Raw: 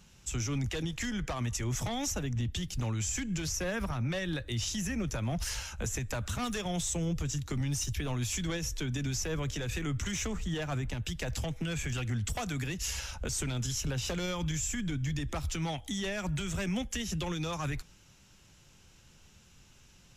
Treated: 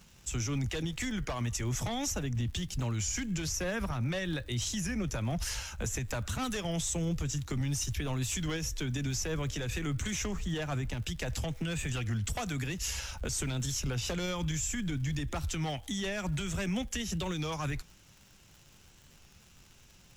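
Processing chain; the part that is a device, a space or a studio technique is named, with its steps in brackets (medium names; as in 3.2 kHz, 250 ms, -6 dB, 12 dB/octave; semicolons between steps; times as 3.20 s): warped LP (warped record 33 1/3 rpm, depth 100 cents; crackle 140 per s -46 dBFS; white noise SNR 42 dB)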